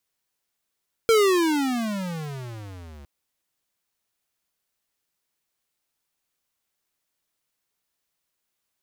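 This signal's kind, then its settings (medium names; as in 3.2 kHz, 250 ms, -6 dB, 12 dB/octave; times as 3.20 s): gliding synth tone square, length 1.96 s, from 463 Hz, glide -33 st, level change -27.5 dB, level -16 dB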